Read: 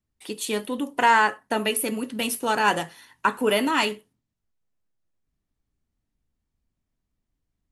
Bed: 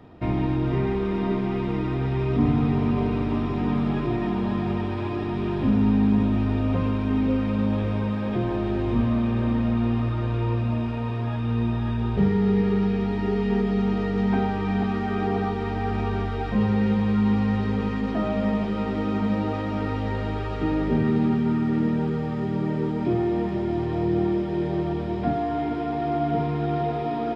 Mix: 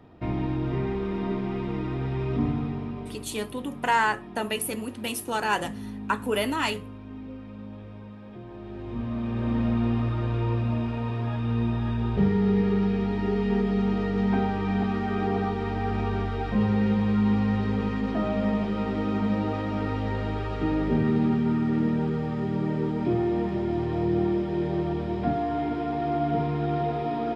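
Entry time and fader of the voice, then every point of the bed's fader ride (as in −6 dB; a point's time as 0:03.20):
2.85 s, −4.5 dB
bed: 0:02.37 −4 dB
0:03.34 −17 dB
0:08.44 −17 dB
0:09.61 −1.5 dB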